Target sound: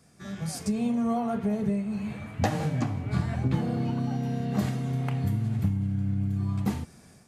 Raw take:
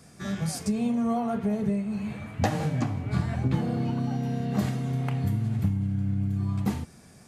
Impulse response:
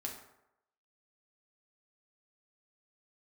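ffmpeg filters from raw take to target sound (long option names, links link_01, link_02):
-af "dynaudnorm=framelen=310:gausssize=3:maxgain=7dB,volume=-7.5dB"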